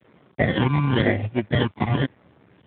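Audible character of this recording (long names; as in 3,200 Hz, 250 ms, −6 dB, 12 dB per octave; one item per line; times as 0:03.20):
aliases and images of a low sample rate 1,300 Hz, jitter 0%
phaser sweep stages 12, 0.97 Hz, lowest notch 530–1,300 Hz
a quantiser's noise floor 10 bits, dither none
Speex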